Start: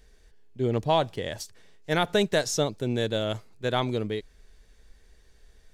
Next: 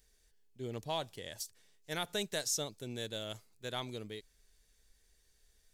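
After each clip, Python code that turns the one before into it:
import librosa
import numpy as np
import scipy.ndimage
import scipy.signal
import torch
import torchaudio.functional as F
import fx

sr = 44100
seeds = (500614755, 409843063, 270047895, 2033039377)

y = librosa.effects.preemphasis(x, coef=0.8, zi=[0.0])
y = y * 10.0 ** (-1.5 / 20.0)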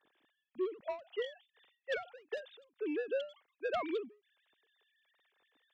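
y = fx.sine_speech(x, sr)
y = 10.0 ** (-34.5 / 20.0) * np.tanh(y / 10.0 ** (-34.5 / 20.0))
y = fx.end_taper(y, sr, db_per_s=170.0)
y = y * 10.0 ** (7.5 / 20.0)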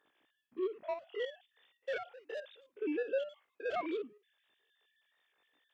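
y = fx.spec_steps(x, sr, hold_ms=50)
y = y * 10.0 ** (2.5 / 20.0)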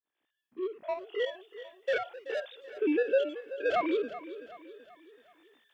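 y = fx.fade_in_head(x, sr, length_s=1.45)
y = fx.echo_feedback(y, sr, ms=380, feedback_pct=46, wet_db=-14)
y = y * 10.0 ** (8.0 / 20.0)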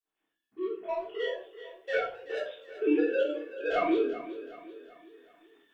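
y = fx.room_shoebox(x, sr, seeds[0], volume_m3=330.0, walls='furnished', distance_m=3.4)
y = y * 10.0 ** (-5.5 / 20.0)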